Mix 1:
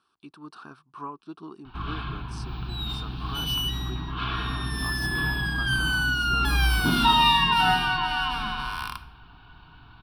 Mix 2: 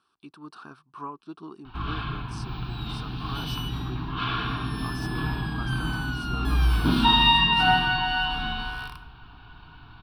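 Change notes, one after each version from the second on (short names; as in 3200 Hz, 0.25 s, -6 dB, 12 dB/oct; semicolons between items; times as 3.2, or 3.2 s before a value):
first sound: send +6.5 dB; second sound -10.0 dB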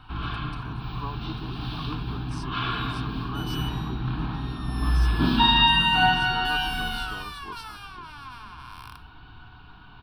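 first sound: entry -1.65 s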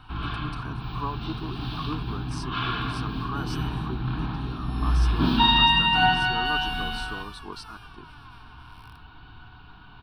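speech +4.5 dB; second sound -9.5 dB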